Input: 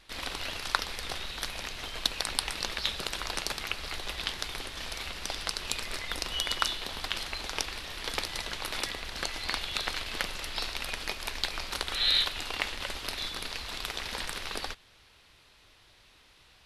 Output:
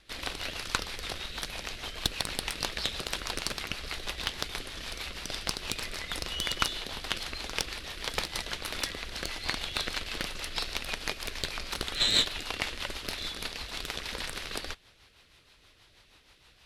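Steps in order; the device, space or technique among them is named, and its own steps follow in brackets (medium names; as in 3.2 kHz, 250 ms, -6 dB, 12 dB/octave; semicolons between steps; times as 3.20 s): overdriven rotary cabinet (valve stage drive 18 dB, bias 0.8; rotary cabinet horn 6.3 Hz); trim +7 dB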